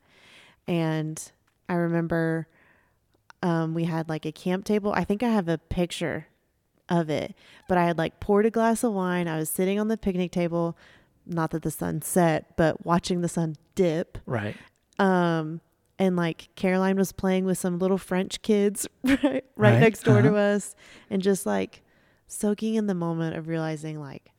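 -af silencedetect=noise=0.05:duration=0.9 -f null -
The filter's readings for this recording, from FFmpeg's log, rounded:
silence_start: 2.41
silence_end: 3.43 | silence_duration: 1.02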